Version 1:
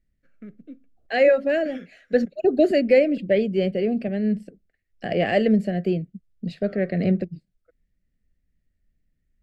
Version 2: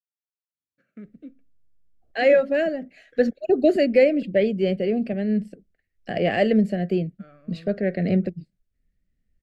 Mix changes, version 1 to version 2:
first voice: entry +0.55 s
second voice: entry +1.05 s

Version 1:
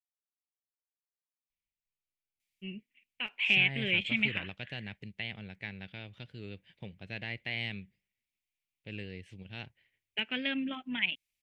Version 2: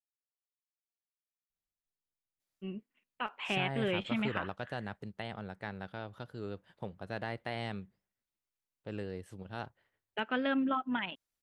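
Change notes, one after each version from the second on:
second voice: remove low-pass filter 5,000 Hz 12 dB per octave
master: add drawn EQ curve 160 Hz 0 dB, 1,300 Hz +14 dB, 2,300 Hz −13 dB, 4,200 Hz −3 dB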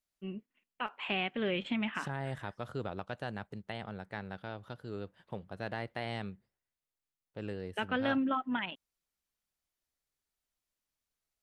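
first voice: entry −2.40 s
second voice: entry −1.50 s

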